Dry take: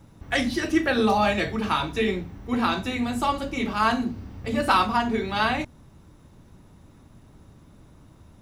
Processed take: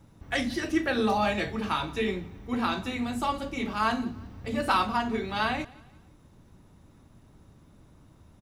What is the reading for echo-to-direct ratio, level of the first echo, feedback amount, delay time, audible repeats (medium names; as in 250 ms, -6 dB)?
-22.0 dB, -22.5 dB, 40%, 175 ms, 2